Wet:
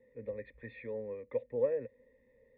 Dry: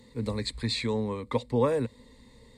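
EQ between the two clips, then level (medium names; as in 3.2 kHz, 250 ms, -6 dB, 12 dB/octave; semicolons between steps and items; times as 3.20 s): cascade formant filter e; 0.0 dB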